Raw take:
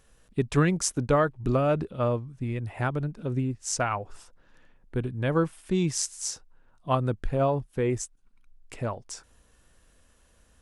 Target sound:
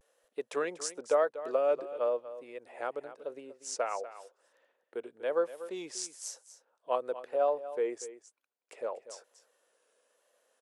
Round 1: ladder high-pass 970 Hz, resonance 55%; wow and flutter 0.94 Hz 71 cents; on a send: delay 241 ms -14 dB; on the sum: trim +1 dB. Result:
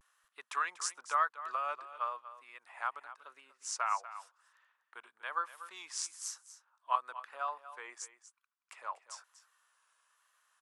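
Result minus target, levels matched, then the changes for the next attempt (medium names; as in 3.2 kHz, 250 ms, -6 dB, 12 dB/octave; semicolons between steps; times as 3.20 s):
500 Hz band -16.5 dB
change: ladder high-pass 440 Hz, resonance 55%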